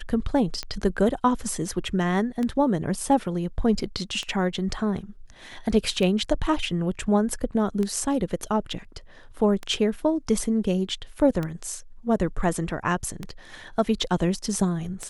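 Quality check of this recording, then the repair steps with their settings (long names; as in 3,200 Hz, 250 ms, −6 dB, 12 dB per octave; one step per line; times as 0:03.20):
scratch tick 33 1/3 rpm −16 dBFS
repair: click removal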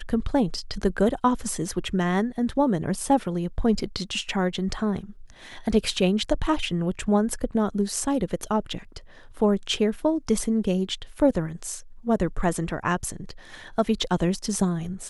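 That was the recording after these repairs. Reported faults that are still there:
none of them is left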